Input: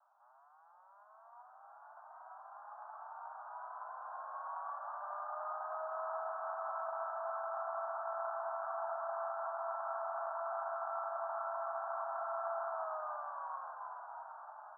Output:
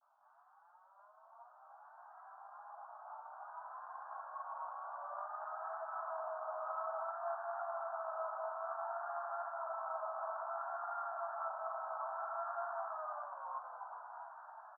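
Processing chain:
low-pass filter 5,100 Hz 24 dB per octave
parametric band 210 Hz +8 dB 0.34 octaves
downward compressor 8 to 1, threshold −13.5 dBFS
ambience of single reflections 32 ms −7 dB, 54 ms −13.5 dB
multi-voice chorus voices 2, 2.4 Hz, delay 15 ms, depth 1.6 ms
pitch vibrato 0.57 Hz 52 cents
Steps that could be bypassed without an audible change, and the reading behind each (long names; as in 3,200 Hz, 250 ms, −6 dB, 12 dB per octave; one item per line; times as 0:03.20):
low-pass filter 5,100 Hz: nothing at its input above 1,700 Hz
parametric band 210 Hz: nothing at its input below 540 Hz
downward compressor, threshold −13.5 dBFS: peak of its input −27.5 dBFS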